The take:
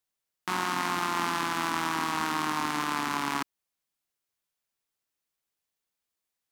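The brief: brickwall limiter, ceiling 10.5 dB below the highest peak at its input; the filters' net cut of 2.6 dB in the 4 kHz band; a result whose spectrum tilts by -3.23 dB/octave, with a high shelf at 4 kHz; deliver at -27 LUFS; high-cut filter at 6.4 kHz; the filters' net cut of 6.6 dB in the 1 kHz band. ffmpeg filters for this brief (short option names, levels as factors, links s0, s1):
-af "lowpass=6400,equalizer=f=1000:t=o:g=-8,highshelf=f=4000:g=4.5,equalizer=f=4000:t=o:g=-5,volume=4.47,alimiter=limit=0.251:level=0:latency=1"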